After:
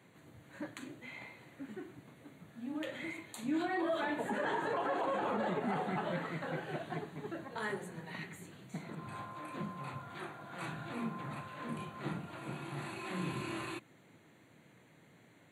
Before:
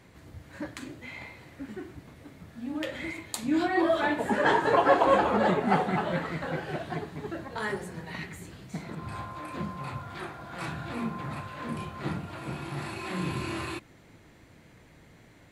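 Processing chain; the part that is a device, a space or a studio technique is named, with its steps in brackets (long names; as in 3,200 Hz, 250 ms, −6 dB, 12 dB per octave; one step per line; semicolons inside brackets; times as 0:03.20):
PA system with an anti-feedback notch (high-pass filter 120 Hz 24 dB per octave; Butterworth band-reject 5,200 Hz, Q 3.1; brickwall limiter −20.5 dBFS, peak gain reduction 10.5 dB)
level −6 dB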